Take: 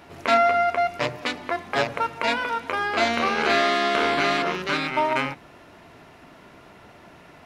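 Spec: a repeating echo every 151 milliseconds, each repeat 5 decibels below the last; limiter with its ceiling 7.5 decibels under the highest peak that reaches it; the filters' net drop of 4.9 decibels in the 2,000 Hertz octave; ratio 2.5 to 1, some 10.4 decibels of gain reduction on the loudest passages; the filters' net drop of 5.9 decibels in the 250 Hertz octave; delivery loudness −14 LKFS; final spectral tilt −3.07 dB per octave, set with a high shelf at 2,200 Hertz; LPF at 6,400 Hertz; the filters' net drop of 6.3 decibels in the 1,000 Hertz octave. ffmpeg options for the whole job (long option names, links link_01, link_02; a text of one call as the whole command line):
ffmpeg -i in.wav -af "lowpass=6400,equalizer=frequency=250:width_type=o:gain=-7,equalizer=frequency=1000:width_type=o:gain=-9,equalizer=frequency=2000:width_type=o:gain=-6.5,highshelf=frequency=2200:gain=6,acompressor=threshold=-36dB:ratio=2.5,alimiter=level_in=1.5dB:limit=-24dB:level=0:latency=1,volume=-1.5dB,aecho=1:1:151|302|453|604|755|906|1057:0.562|0.315|0.176|0.0988|0.0553|0.031|0.0173,volume=20.5dB" out.wav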